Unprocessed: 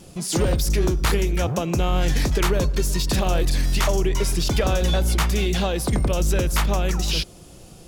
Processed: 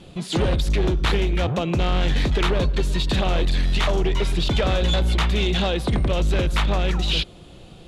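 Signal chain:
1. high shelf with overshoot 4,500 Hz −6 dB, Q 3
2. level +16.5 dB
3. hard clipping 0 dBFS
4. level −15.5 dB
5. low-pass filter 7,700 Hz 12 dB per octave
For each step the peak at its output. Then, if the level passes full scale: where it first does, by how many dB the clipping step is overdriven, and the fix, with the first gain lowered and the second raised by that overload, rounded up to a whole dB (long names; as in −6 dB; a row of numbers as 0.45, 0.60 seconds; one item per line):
−8.0, +8.5, 0.0, −15.5, −14.5 dBFS
step 2, 8.5 dB
step 2 +7.5 dB, step 4 −6.5 dB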